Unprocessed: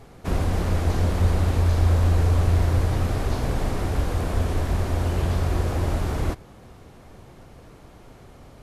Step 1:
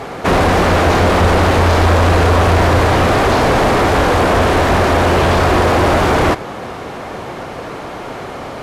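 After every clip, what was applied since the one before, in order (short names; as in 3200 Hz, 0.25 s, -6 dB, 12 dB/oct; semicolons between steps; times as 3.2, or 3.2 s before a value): overdrive pedal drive 29 dB, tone 1900 Hz, clips at -8 dBFS; gain +5.5 dB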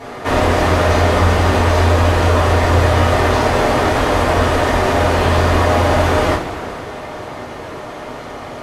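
two-slope reverb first 0.33 s, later 3.4 s, from -18 dB, DRR -7.5 dB; gain -10.5 dB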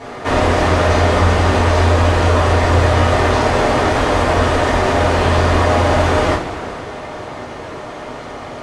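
LPF 9800 Hz 24 dB/oct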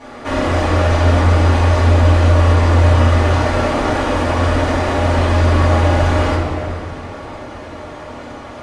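shoebox room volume 4000 m³, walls mixed, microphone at 2.4 m; gain -6 dB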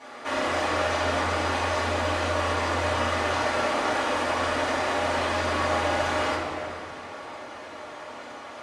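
HPF 790 Hz 6 dB/oct; gain -4 dB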